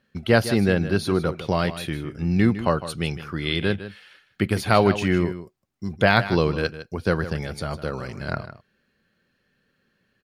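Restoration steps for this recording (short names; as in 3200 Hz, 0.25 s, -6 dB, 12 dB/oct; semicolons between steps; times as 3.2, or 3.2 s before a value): inverse comb 0.156 s -13 dB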